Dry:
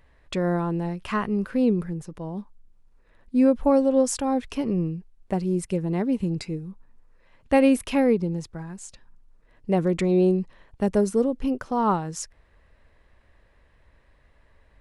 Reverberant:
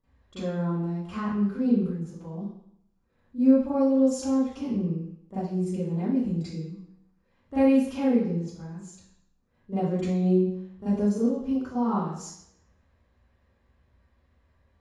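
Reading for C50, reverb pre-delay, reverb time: −2.0 dB, 35 ms, 0.70 s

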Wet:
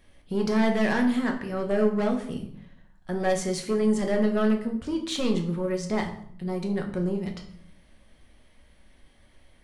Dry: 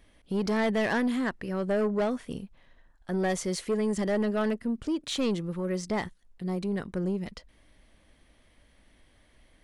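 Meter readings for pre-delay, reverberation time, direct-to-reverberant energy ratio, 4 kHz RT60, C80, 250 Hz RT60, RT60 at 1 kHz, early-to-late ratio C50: 5 ms, 0.65 s, 2.0 dB, 0.50 s, 12.5 dB, 0.95 s, 0.60 s, 9.0 dB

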